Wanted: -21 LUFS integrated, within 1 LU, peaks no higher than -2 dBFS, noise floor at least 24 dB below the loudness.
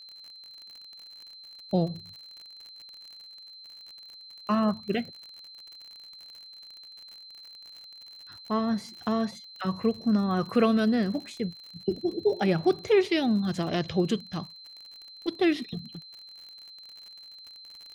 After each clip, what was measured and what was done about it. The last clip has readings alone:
tick rate 50 per s; steady tone 4.1 kHz; tone level -45 dBFS; loudness -28.0 LUFS; peak level -11.5 dBFS; loudness target -21.0 LUFS
-> de-click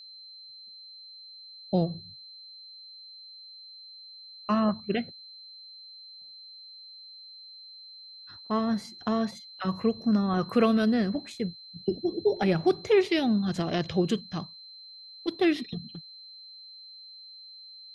tick rate 0.11 per s; steady tone 4.1 kHz; tone level -45 dBFS
-> band-stop 4.1 kHz, Q 30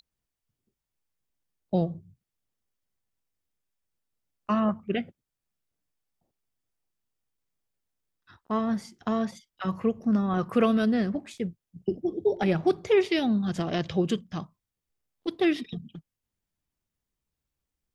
steady tone not found; loudness -27.5 LUFS; peak level -11.5 dBFS; loudness target -21.0 LUFS
-> trim +6.5 dB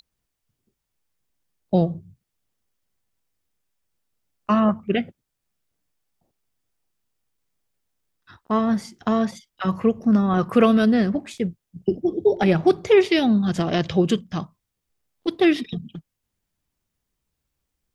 loudness -21.0 LUFS; peak level -5.0 dBFS; noise floor -80 dBFS

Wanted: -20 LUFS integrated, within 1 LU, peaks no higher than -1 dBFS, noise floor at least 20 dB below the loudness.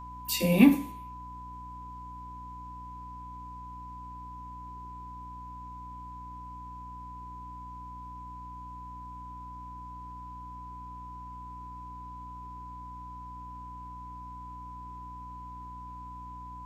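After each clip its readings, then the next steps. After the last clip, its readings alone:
hum 60 Hz; highest harmonic 300 Hz; hum level -45 dBFS; steady tone 1 kHz; tone level -42 dBFS; loudness -36.0 LUFS; peak level -7.0 dBFS; loudness target -20.0 LUFS
-> hum notches 60/120/180/240/300 Hz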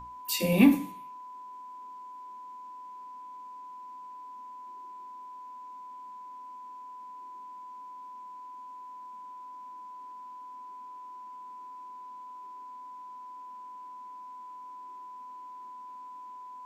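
hum not found; steady tone 1 kHz; tone level -42 dBFS
-> band-stop 1 kHz, Q 30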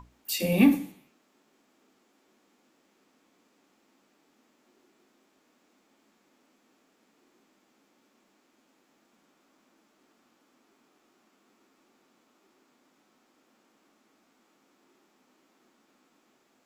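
steady tone not found; loudness -25.0 LUFS; peak level -9.0 dBFS; loudness target -20.0 LUFS
-> trim +5 dB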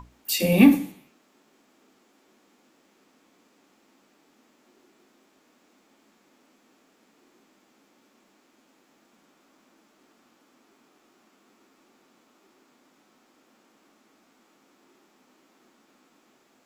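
loudness -20.0 LUFS; peak level -4.0 dBFS; noise floor -64 dBFS

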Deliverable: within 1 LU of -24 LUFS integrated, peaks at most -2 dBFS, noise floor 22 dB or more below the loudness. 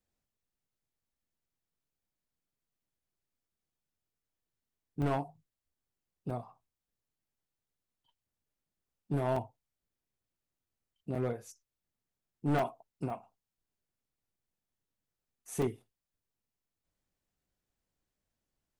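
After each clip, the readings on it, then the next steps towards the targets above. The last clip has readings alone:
clipped samples 0.4%; clipping level -25.0 dBFS; dropouts 7; longest dropout 4.1 ms; loudness -36.0 LUFS; peak level -25.0 dBFS; loudness target -24.0 LUFS
-> clip repair -25 dBFS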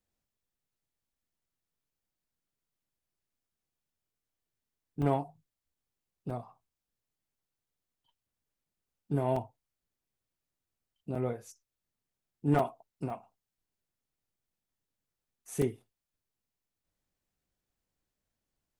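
clipped samples 0.0%; dropouts 7; longest dropout 4.1 ms
-> interpolate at 5.02/6.30/9.36/11.15/12.59/13.10/15.62 s, 4.1 ms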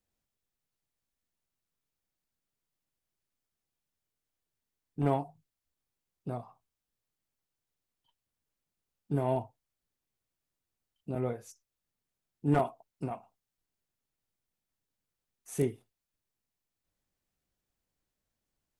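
dropouts 0; loudness -34.0 LUFS; peak level -16.0 dBFS; loudness target -24.0 LUFS
-> trim +10 dB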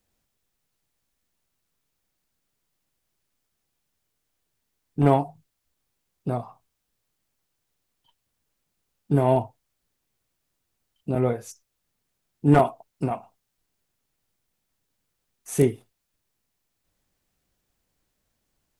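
loudness -24.0 LUFS; peak level -6.0 dBFS; noise floor -78 dBFS

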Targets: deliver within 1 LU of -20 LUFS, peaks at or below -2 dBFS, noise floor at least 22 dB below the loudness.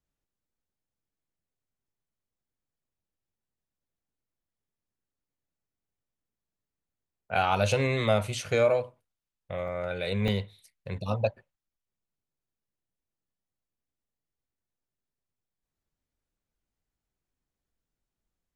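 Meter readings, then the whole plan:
dropouts 2; longest dropout 1.4 ms; loudness -28.0 LUFS; peak level -11.5 dBFS; loudness target -20.0 LUFS
-> interpolate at 9.68/10.28 s, 1.4 ms; trim +8 dB

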